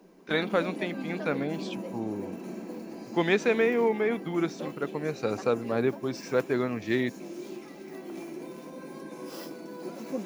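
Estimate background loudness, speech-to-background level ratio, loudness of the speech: -40.0 LUFS, 10.5 dB, -29.5 LUFS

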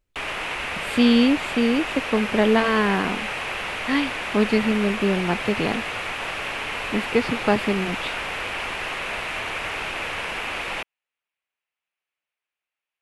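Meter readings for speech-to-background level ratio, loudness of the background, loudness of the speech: 5.0 dB, -27.5 LUFS, -22.5 LUFS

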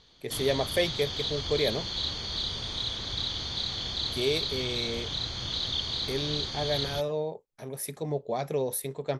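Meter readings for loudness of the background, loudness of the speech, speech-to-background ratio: -31.0 LUFS, -31.5 LUFS, -0.5 dB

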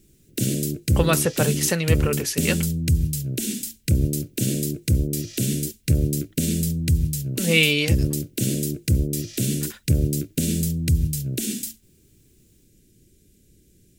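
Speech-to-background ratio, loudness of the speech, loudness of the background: 1.5 dB, -22.5 LUFS, -24.0 LUFS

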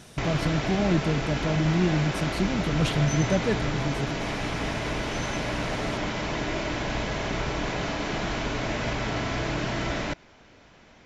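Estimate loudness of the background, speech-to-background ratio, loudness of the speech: -29.5 LUFS, 2.5 dB, -27.0 LUFS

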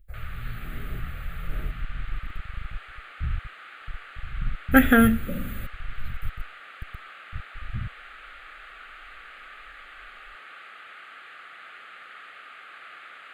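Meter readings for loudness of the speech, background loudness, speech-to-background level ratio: -27.0 LUFS, -43.5 LUFS, 16.5 dB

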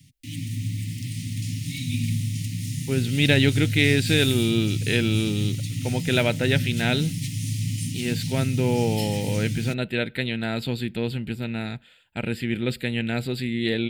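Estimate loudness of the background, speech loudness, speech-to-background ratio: -28.5 LUFS, -25.0 LUFS, 3.5 dB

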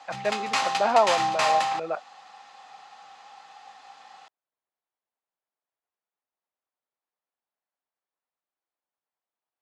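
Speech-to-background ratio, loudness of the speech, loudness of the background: -1.0 dB, -27.0 LUFS, -26.0 LUFS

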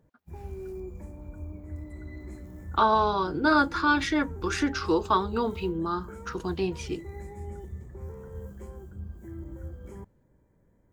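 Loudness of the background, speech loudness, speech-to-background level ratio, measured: -41.5 LUFS, -26.5 LUFS, 15.0 dB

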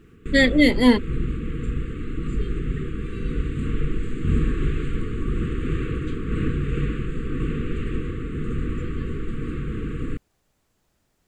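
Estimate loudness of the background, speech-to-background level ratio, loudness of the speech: -28.5 LUFS, 10.5 dB, -18.0 LUFS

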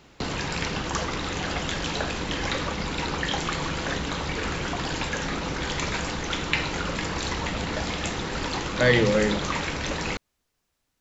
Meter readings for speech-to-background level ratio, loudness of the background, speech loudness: 6.0 dB, -28.5 LUFS, -22.5 LUFS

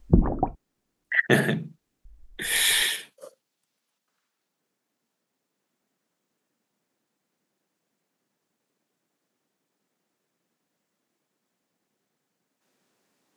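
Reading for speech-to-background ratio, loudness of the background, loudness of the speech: 2.5 dB, -26.0 LUFS, -23.5 LUFS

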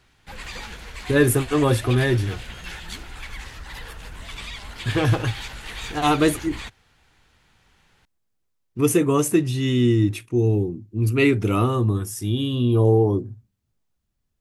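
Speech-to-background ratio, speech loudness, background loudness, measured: 14.5 dB, -21.0 LUFS, -35.5 LUFS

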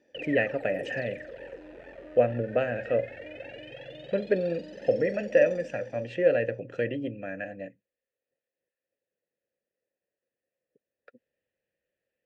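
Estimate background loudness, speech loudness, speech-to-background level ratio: -43.0 LUFS, -28.5 LUFS, 14.5 dB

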